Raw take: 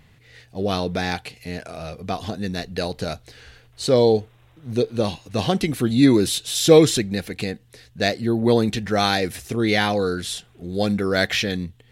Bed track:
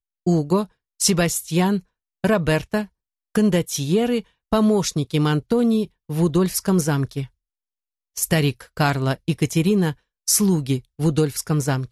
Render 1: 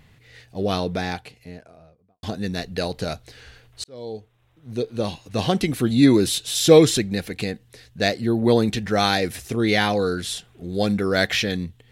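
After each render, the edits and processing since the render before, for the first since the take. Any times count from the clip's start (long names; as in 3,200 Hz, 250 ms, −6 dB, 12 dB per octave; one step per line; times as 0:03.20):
0:00.65–0:02.23: fade out and dull
0:03.84–0:05.51: fade in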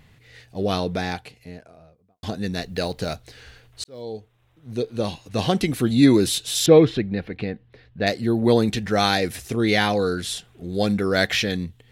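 0:02.62–0:04.02: one scale factor per block 7 bits
0:06.66–0:08.07: high-frequency loss of the air 360 metres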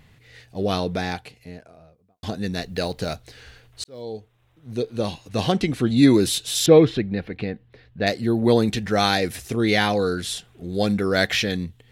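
0:05.52–0:05.97: high-frequency loss of the air 54 metres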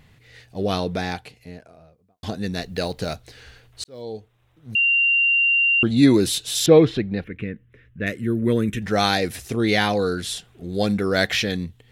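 0:04.75–0:05.83: beep over 2,770 Hz −15 dBFS
0:07.24–0:08.82: phaser with its sweep stopped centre 1,900 Hz, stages 4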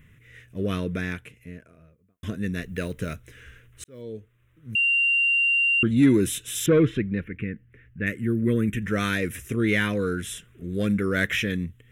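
soft clipping −7.5 dBFS, distortion −19 dB
phaser with its sweep stopped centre 1,900 Hz, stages 4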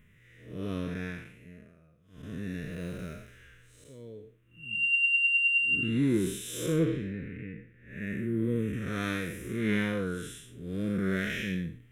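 spectrum smeared in time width 222 ms
flanger 0.62 Hz, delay 4.7 ms, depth 2.8 ms, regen +58%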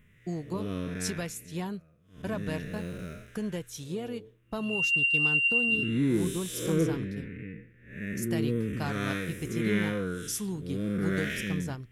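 mix in bed track −16 dB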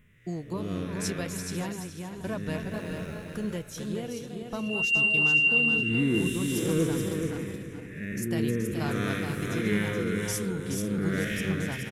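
feedback delay that plays each chunk backwards 246 ms, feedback 41%, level −8 dB
repeating echo 425 ms, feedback 18%, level −5.5 dB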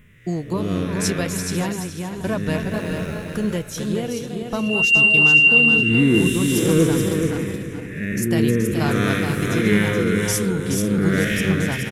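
level +9.5 dB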